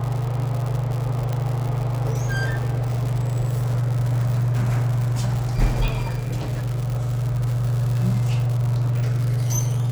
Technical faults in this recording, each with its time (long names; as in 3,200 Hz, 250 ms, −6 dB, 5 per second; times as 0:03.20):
surface crackle 140 per second −26 dBFS
0:01.33: click
0:05.88: click